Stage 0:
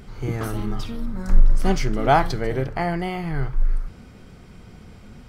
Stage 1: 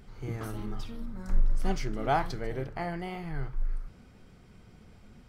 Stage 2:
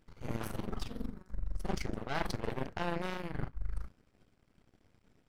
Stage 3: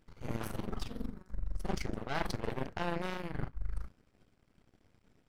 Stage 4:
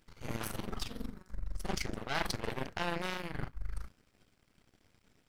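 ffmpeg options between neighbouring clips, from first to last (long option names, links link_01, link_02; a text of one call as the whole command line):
ffmpeg -i in.wav -af "flanger=delay=1.1:depth=8.8:regen=82:speed=1.2:shape=sinusoidal,volume=-5.5dB" out.wav
ffmpeg -i in.wav -af "areverse,acompressor=threshold=-32dB:ratio=20,areverse,aeval=exprs='0.0531*(cos(1*acos(clip(val(0)/0.0531,-1,1)))-cos(1*PI/2))+0.0168*(cos(3*acos(clip(val(0)/0.0531,-1,1)))-cos(3*PI/2))+0.0119*(cos(4*acos(clip(val(0)/0.0531,-1,1)))-cos(4*PI/2))':channel_layout=same,volume=3.5dB" out.wav
ffmpeg -i in.wav -af anull out.wav
ffmpeg -i in.wav -af "tiltshelf=frequency=1500:gain=-4.5,volume=2.5dB" out.wav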